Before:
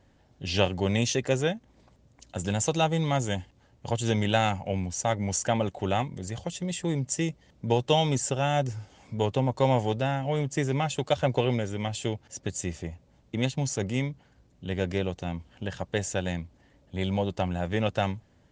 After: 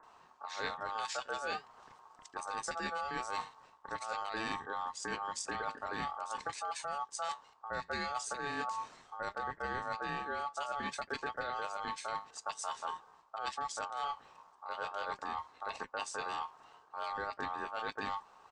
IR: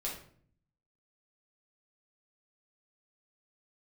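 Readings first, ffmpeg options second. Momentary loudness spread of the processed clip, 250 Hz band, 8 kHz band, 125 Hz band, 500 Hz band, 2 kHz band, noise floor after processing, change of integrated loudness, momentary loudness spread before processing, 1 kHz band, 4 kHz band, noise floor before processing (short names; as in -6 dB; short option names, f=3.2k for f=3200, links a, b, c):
8 LU, -20.0 dB, -11.5 dB, -29.0 dB, -15.5 dB, -4.0 dB, -63 dBFS, -11.0 dB, 11 LU, -4.0 dB, -11.0 dB, -62 dBFS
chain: -filter_complex "[0:a]flanger=delay=2.9:depth=6.8:regen=81:speed=0.45:shape=sinusoidal,acrossover=split=890[a][b];[b]adelay=30[c];[a][c]amix=inputs=2:normalize=0,areverse,acompressor=threshold=-43dB:ratio=6,areverse,aeval=exprs='val(0)*sin(2*PI*1000*n/s)':c=same,volume=9.5dB"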